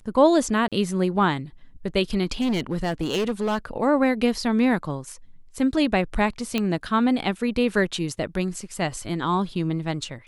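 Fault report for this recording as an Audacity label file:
0.680000	0.720000	drop-out 37 ms
2.400000	3.580000	clipping −20 dBFS
6.580000	6.580000	click −10 dBFS

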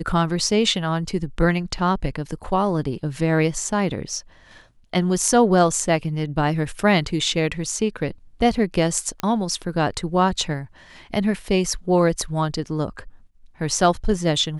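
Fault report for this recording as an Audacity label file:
9.200000	9.200000	click −11 dBFS

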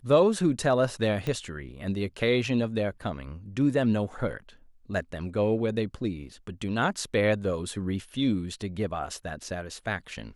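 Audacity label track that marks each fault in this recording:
1.270000	1.270000	click −19 dBFS

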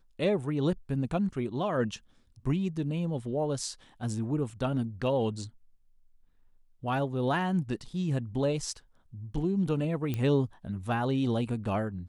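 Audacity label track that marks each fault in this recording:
4.500000	4.500000	drop-out 2.1 ms
10.140000	10.140000	click −19 dBFS

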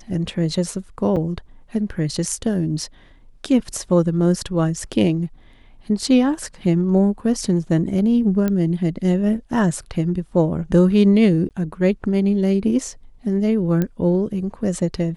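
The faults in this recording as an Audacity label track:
1.160000	1.170000	drop-out 5.9 ms
8.480000	8.480000	click −10 dBFS
11.490000	11.510000	drop-out 18 ms
13.820000	13.820000	click −10 dBFS

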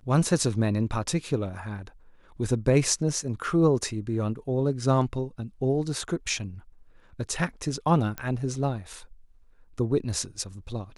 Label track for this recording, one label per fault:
8.180000	8.180000	click −16 dBFS

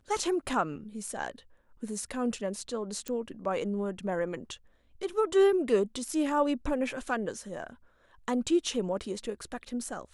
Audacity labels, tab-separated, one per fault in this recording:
3.080000	3.080000	click −20 dBFS

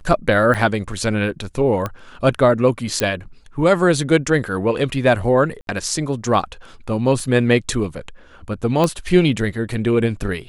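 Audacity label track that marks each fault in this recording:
0.540000	0.550000	drop-out 6.9 ms
1.860000	1.860000	click −11 dBFS
3.000000	3.000000	click −4 dBFS
5.610000	5.670000	drop-out 62 ms
7.200000	7.200000	drop-out 2.3 ms
8.840000	8.840000	click −6 dBFS

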